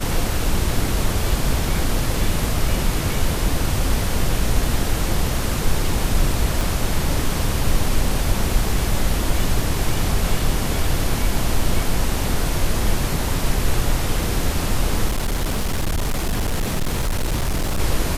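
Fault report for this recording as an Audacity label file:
6.610000	6.610000	click
15.080000	17.800000	clipping −17 dBFS

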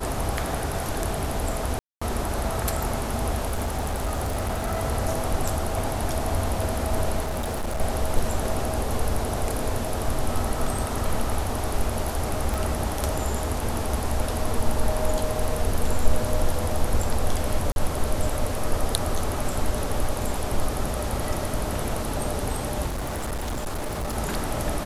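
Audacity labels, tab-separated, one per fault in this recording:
1.790000	2.020000	drop-out 225 ms
3.500000	4.800000	clipping −22.5 dBFS
7.220000	7.810000	clipping −24 dBFS
12.540000	12.540000	click
17.720000	17.760000	drop-out 41 ms
22.860000	24.170000	clipping −25.5 dBFS

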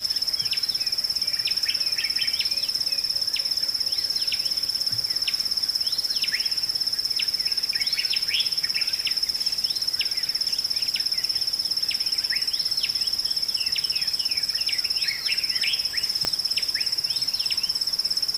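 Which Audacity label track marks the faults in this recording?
16.250000	16.250000	click −8 dBFS

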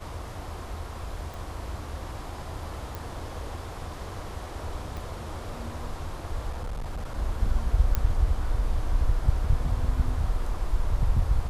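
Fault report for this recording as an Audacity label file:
1.340000	1.340000	click
2.950000	2.950000	click
4.970000	4.970000	click
6.500000	7.180000	clipping −29 dBFS
7.950000	7.950000	click −11 dBFS

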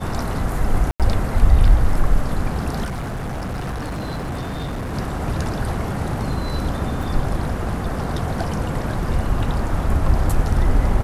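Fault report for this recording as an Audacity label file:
0.910000	1.000000	drop-out 87 ms
2.840000	4.940000	clipping −23.5 dBFS
7.030000	7.030000	drop-out 3.6 ms

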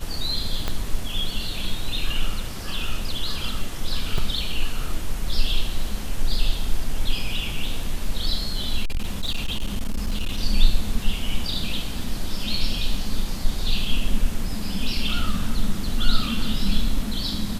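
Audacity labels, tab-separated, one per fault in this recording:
0.680000	0.680000	click −10 dBFS
4.180000	4.180000	drop-out 3.7 ms
8.830000	10.410000	clipping −19.5 dBFS

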